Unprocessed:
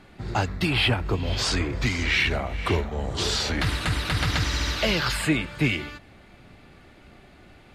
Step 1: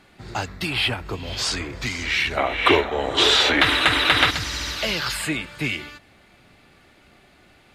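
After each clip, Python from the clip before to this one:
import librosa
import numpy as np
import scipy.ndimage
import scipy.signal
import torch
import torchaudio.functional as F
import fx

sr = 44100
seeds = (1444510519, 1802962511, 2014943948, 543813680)

y = fx.spec_box(x, sr, start_s=2.38, length_s=1.92, low_hz=240.0, high_hz=4100.0, gain_db=12)
y = fx.tilt_eq(y, sr, slope=1.5)
y = F.gain(torch.from_numpy(y), -1.5).numpy()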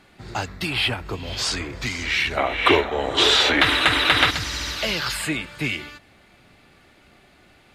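y = x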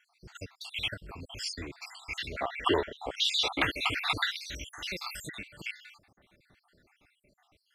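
y = fx.spec_dropout(x, sr, seeds[0], share_pct=66)
y = F.gain(torch.from_numpy(y), -8.5).numpy()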